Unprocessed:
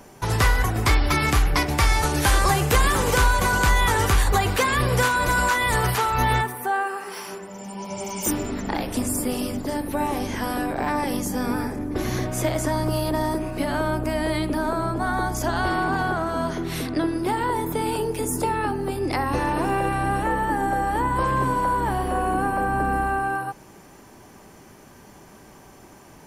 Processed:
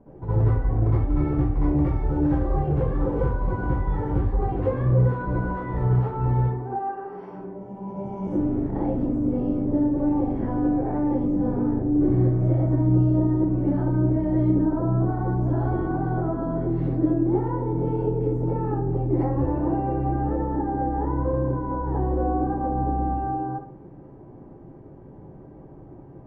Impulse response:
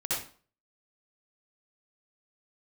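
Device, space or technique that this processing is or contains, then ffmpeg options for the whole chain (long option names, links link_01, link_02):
television next door: -filter_complex "[0:a]acompressor=threshold=-22dB:ratio=6,lowpass=470[link_01];[1:a]atrim=start_sample=2205[link_02];[link_01][link_02]afir=irnorm=-1:irlink=0,volume=-1dB"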